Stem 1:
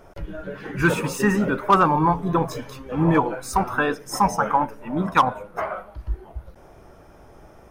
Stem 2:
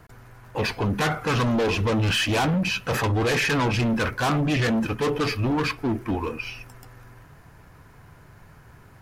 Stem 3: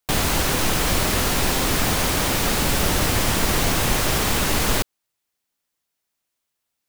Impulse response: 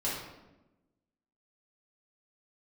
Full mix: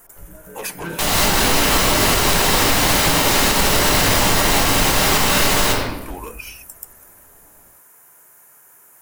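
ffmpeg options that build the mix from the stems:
-filter_complex "[0:a]asoftclip=type=hard:threshold=-13.5dB,volume=-15dB,asplit=2[a][b];[b]volume=-3.5dB[c];[1:a]aexciter=amount=8.4:drive=7.8:freq=6.6k,volume=-2.5dB[d];[2:a]lowshelf=f=480:g=-7.5,dynaudnorm=f=160:g=3:m=7.5dB,adelay=900,volume=-1dB,asplit=2[e][f];[f]volume=-3dB[g];[d][e]amix=inputs=2:normalize=0,highpass=440,acompressor=threshold=-23dB:ratio=6,volume=0dB[h];[3:a]atrim=start_sample=2205[i];[c][g]amix=inputs=2:normalize=0[j];[j][i]afir=irnorm=-1:irlink=0[k];[a][h][k]amix=inputs=3:normalize=0,alimiter=limit=-5dB:level=0:latency=1:release=126"

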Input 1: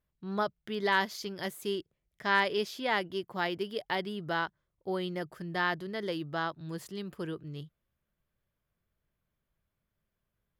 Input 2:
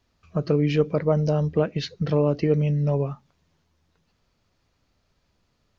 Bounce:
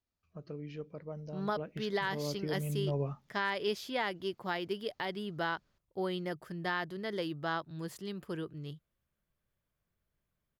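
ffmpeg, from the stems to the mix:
-filter_complex "[0:a]adelay=1100,volume=-1.5dB[a];[1:a]volume=-7.5dB,afade=t=in:st=1.47:d=0.24:silence=0.473151,afade=t=in:st=2.6:d=0.48:silence=0.398107[b];[a][b]amix=inputs=2:normalize=0,alimiter=limit=-22.5dB:level=0:latency=1:release=171"

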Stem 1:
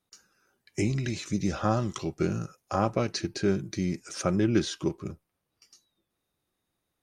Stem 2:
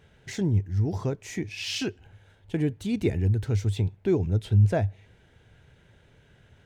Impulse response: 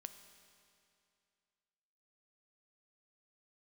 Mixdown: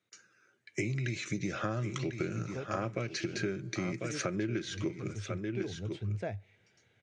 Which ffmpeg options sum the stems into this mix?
-filter_complex "[0:a]equalizer=f=125:t=o:w=0.33:g=8,equalizer=f=200:t=o:w=0.33:g=-3,equalizer=f=315:t=o:w=0.33:g=3,equalizer=f=800:t=o:w=0.33:g=-8,equalizer=f=1.6k:t=o:w=0.33:g=4,equalizer=f=5k:t=o:w=0.33:g=-6,volume=-0.5dB,asplit=4[a][b][c][d];[b]volume=-13.5dB[e];[c]volume=-10.5dB[f];[1:a]adelay=1500,volume=-9.5dB[g];[d]apad=whole_len=359697[h];[g][h]sidechaincompress=threshold=-41dB:ratio=8:attack=11:release=102[i];[2:a]atrim=start_sample=2205[j];[e][j]afir=irnorm=-1:irlink=0[k];[f]aecho=0:1:1046:1[l];[a][i][k][l]amix=inputs=4:normalize=0,highpass=f=110:w=0.5412,highpass=f=110:w=1.3066,equalizer=f=150:t=q:w=4:g=-6,equalizer=f=270:t=q:w=4:g=-5,equalizer=f=1k:t=q:w=4:g=-5,equalizer=f=2.2k:t=q:w=4:g=8,lowpass=f=7.4k:w=0.5412,lowpass=f=7.4k:w=1.3066,acompressor=threshold=-30dB:ratio=10"

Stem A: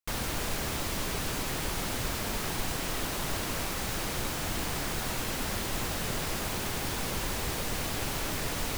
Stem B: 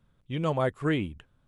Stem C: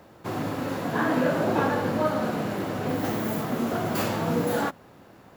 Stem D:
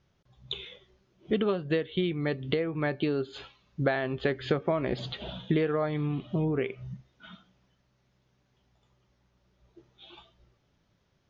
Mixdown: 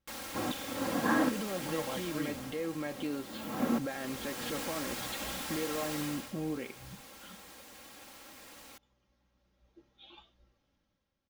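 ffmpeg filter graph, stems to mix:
-filter_complex "[0:a]highpass=f=330:p=1,volume=2dB,afade=t=out:st=1.97:d=0.56:silence=0.398107,afade=t=in:st=3.83:d=0.78:silence=0.281838,afade=t=out:st=5.99:d=0.34:silence=0.237137[a];[1:a]adelay=1300,volume=-14dB[b];[2:a]adelay=100,volume=-5dB[c];[3:a]dynaudnorm=f=130:g=9:m=8.5dB,alimiter=limit=-16.5dB:level=0:latency=1,volume=-13.5dB,asplit=2[d][e];[e]apad=whole_len=241115[f];[c][f]sidechaincompress=threshold=-57dB:ratio=8:attack=5.6:release=188[g];[a][b][g][d]amix=inputs=4:normalize=0,aecho=1:1:3.7:0.58"

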